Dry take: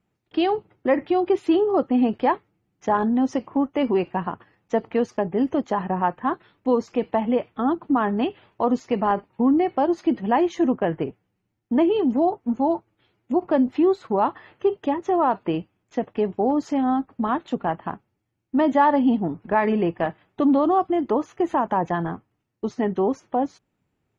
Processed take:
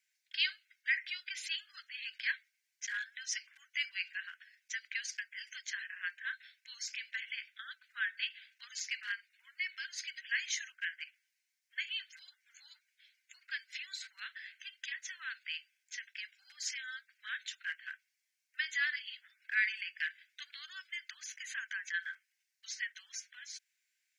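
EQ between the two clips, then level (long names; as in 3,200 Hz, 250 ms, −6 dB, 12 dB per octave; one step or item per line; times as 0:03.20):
Chebyshev high-pass with heavy ripple 1,500 Hz, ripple 6 dB
high-shelf EQ 2,100 Hz +11 dB
0.0 dB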